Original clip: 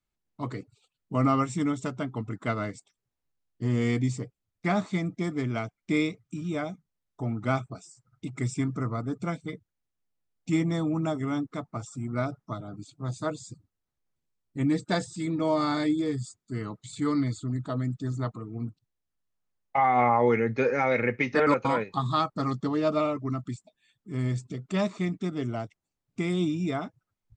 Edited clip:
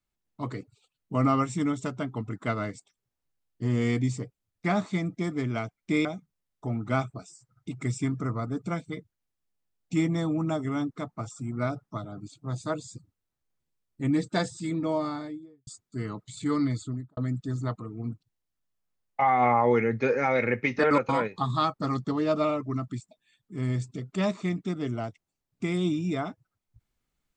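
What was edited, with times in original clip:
6.05–6.61 s: delete
15.18–16.23 s: studio fade out
17.39–17.73 s: studio fade out

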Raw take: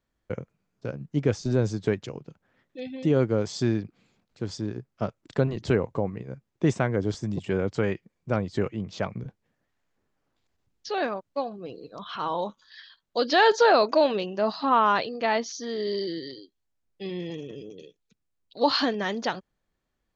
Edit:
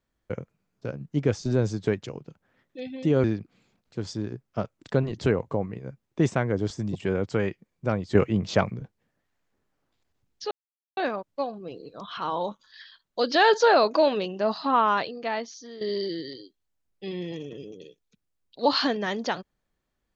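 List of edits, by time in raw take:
3.24–3.68 s: delete
8.59–9.15 s: gain +7.5 dB
10.95 s: insert silence 0.46 s
14.66–15.79 s: fade out, to -11.5 dB

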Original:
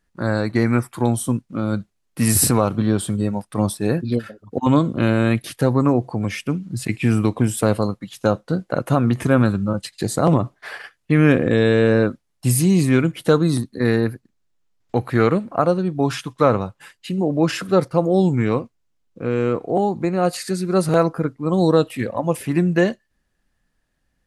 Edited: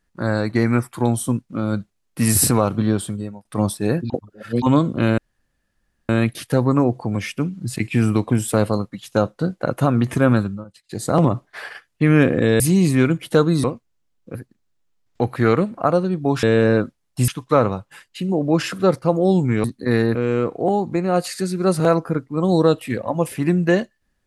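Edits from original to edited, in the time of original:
2.89–3.45 s: fade out linear, to -24 dB
4.10–4.62 s: reverse
5.18 s: insert room tone 0.91 s
9.46–10.21 s: dip -18 dB, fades 0.28 s
11.69–12.54 s: move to 16.17 s
13.58–14.09 s: swap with 18.53–19.24 s

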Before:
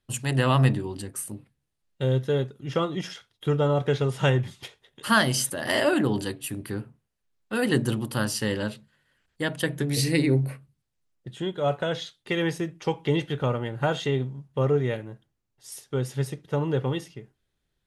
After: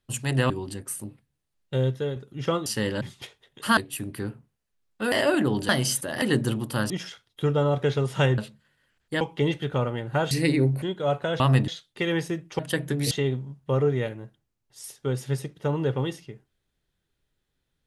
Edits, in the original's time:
0.50–0.78 s: move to 11.98 s
2.08–2.44 s: fade out, to -7 dB
2.94–4.42 s: swap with 8.31–8.66 s
5.18–5.71 s: swap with 6.28–7.63 s
9.49–10.01 s: swap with 12.89–13.99 s
10.52–11.40 s: delete

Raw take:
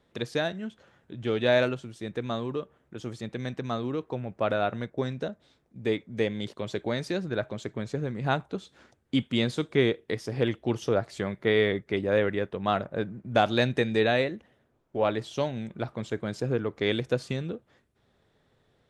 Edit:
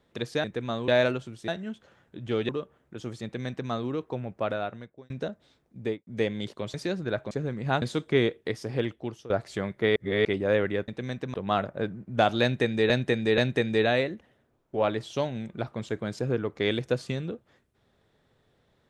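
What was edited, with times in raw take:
0.44–1.45 s: swap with 2.05–2.49 s
3.24–3.70 s: copy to 12.51 s
4.26–5.10 s: fade out
5.80–6.07 s: studio fade out
6.74–6.99 s: delete
7.56–7.89 s: delete
8.40–9.45 s: delete
10.03–10.93 s: fade out equal-power, to -19.5 dB
11.59–11.88 s: reverse
13.59–14.07 s: loop, 3 plays

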